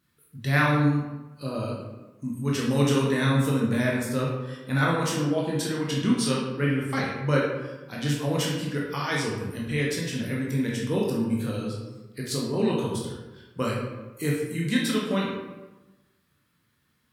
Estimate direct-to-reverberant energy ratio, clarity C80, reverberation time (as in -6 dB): -4.0 dB, 4.0 dB, 1.1 s